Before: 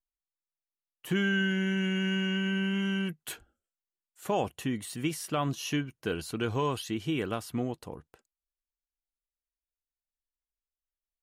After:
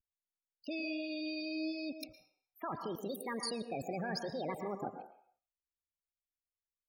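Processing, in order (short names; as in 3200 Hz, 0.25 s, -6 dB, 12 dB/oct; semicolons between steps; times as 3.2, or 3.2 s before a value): loudest bins only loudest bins 16; wide varispeed 1.63×; level quantiser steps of 23 dB; on a send: reverb RT60 0.60 s, pre-delay 0.105 s, DRR 6 dB; on the sum: gain +7.5 dB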